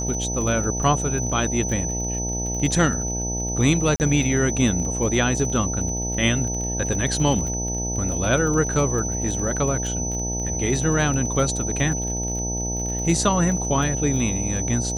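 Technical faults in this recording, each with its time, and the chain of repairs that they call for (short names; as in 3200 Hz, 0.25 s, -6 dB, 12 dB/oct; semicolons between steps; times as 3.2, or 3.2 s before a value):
buzz 60 Hz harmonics 15 -28 dBFS
crackle 27/s -28 dBFS
tone 6000 Hz -27 dBFS
3.96–4 gap 39 ms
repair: de-click; de-hum 60 Hz, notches 15; notch 6000 Hz, Q 30; interpolate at 3.96, 39 ms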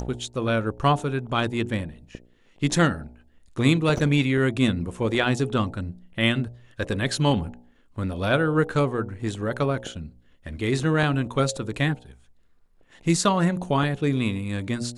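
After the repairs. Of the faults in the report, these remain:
none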